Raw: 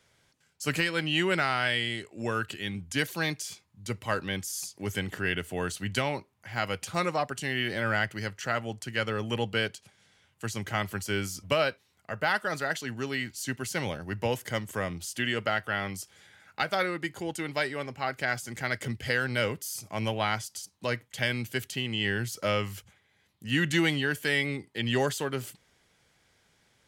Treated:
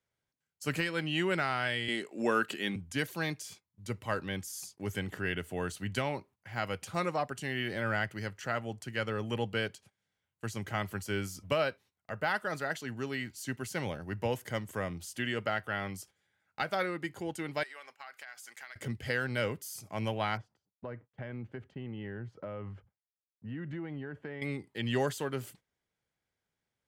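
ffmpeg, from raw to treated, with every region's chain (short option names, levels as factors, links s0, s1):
-filter_complex "[0:a]asettb=1/sr,asplit=3[s0][s1][s2];[s0]atrim=end=1.884[s3];[s1]atrim=start=1.88:end=2.76,asetpts=PTS-STARTPTS,afade=t=in:d=0.004:c=qsin,afade=t=out:st=0.876:d=0.004:c=qsin,highpass=f=190:w=0.5412,highpass=f=190:w=1.3066,acontrast=58[s4];[s2]atrim=start=2.756[s5];[s3][s4]acrossfade=d=0.004:c1=hsin:c2=qsin[s6];[s6][s5]acrossfade=d=0.004:c1=qsin:c2=hsin,asettb=1/sr,asplit=3[s7][s8][s9];[s7]atrim=end=17.634[s10];[s8]atrim=start=17.63:end=18.76,asetpts=PTS-STARTPTS,afade=t=in:d=0.004:c=qsin,afade=t=out:st=1.126:d=0.004:c=qsin,highpass=1100,acompressor=threshold=0.0141:ratio=12:attack=3.2:release=140:knee=1:detection=peak[s11];[s9]atrim=start=18.756[s12];[s10][s11]acrossfade=d=0.004:c1=hsin:c2=qsin[s13];[s13][s12]acrossfade=d=0.004:c1=qsin:c2=hsin,asettb=1/sr,asplit=3[s14][s15][s16];[s14]atrim=end=20.374[s17];[s15]atrim=start=20.37:end=24.42,asetpts=PTS-STARTPTS,afade=t=in:d=0.004:c=qsin,afade=t=out:st=4.046:d=0.004:c=qsin,agate=range=0.0224:threshold=0.00178:ratio=3:release=100:detection=peak,lowpass=1200,acompressor=threshold=0.0224:ratio=6:attack=3.2:release=140:knee=1:detection=peak[s18];[s16]atrim=start=24.416[s19];[s17][s18]acrossfade=d=0.004:c1=hsin:c2=qsin[s20];[s20][s19]acrossfade=d=0.004:c1=qsin:c2=hsin,highshelf=f=3100:g=-11,agate=range=0.158:threshold=0.00224:ratio=16:detection=peak,highshelf=f=6300:g=9,volume=0.708"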